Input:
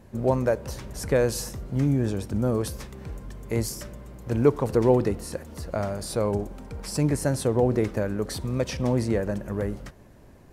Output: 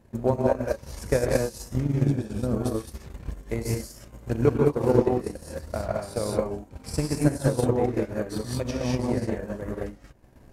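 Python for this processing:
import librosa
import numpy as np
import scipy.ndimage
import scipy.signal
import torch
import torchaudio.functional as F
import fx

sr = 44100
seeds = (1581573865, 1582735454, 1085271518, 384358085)

y = fx.rev_gated(x, sr, seeds[0], gate_ms=240, shape='rising', drr_db=-4.5)
y = fx.transient(y, sr, attack_db=10, sustain_db=-10)
y = F.gain(torch.from_numpy(y), -8.0).numpy()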